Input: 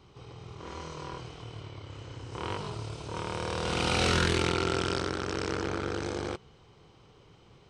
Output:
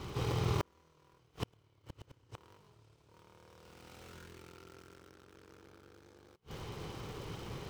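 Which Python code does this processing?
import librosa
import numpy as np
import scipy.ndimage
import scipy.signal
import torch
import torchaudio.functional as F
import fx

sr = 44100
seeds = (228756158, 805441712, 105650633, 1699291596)

y = fx.dead_time(x, sr, dead_ms=0.14)
y = fx.peak_eq(y, sr, hz=710.0, db=-3.0, octaves=0.22)
y = fx.gate_flip(y, sr, shuts_db=-33.0, range_db=-39)
y = F.gain(torch.from_numpy(y), 13.0).numpy()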